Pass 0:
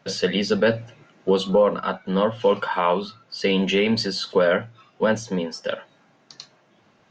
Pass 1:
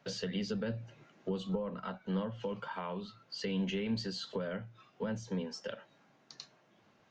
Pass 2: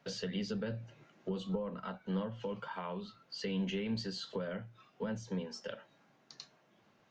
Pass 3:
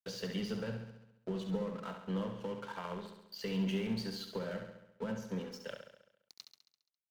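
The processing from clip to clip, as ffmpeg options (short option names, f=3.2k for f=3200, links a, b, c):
-filter_complex "[0:a]acrossover=split=210[a][b];[b]acompressor=threshold=-30dB:ratio=6[c];[a][c]amix=inputs=2:normalize=0,volume=-8dB"
-af "flanger=delay=4.1:depth=2.8:regen=-83:speed=0.61:shape=triangular,volume=3dB"
-af "aeval=exprs='sgn(val(0))*max(abs(val(0))-0.00282,0)':c=same,aecho=1:1:68|136|204|272|340|408|476|544:0.422|0.249|0.147|0.0866|0.0511|0.0301|0.0178|0.0105"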